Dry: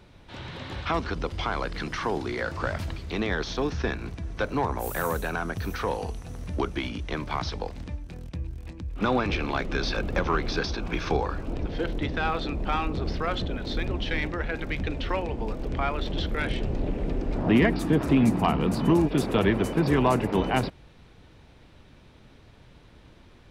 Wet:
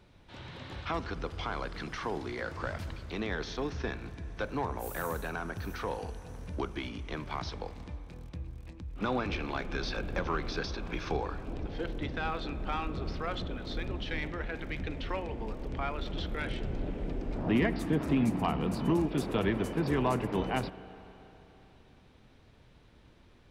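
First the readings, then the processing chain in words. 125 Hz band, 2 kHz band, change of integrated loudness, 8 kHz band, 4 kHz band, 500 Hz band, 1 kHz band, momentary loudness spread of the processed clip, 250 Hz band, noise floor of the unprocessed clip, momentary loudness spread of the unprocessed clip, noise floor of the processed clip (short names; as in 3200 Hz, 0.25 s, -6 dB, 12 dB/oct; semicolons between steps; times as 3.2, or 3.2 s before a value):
-7.0 dB, -7.0 dB, -7.0 dB, -7.0 dB, -7.0 dB, -7.0 dB, -7.0 dB, 14 LU, -7.0 dB, -53 dBFS, 13 LU, -59 dBFS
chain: spring tank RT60 3.5 s, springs 32/45 ms, chirp 80 ms, DRR 14 dB; gain -7 dB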